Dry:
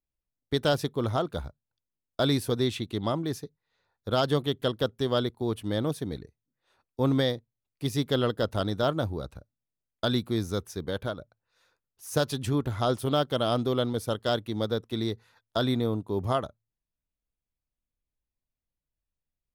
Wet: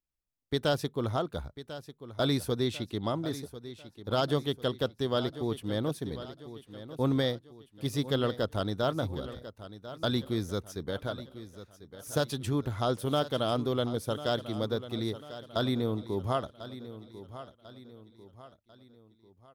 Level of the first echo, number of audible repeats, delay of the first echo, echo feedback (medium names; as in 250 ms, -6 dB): -14.0 dB, 3, 1045 ms, 44%